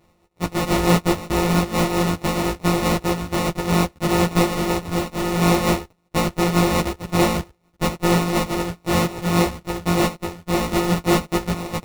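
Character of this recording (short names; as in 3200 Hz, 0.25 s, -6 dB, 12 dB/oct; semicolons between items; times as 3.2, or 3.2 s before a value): a buzz of ramps at a fixed pitch in blocks of 256 samples; tremolo triangle 4.6 Hz, depth 50%; aliases and images of a low sample rate 1600 Hz, jitter 0%; a shimmering, thickened sound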